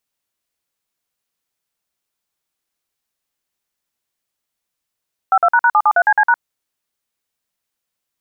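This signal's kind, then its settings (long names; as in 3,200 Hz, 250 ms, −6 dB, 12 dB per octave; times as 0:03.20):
touch tones "52##773CC#", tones 58 ms, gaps 49 ms, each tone −11.5 dBFS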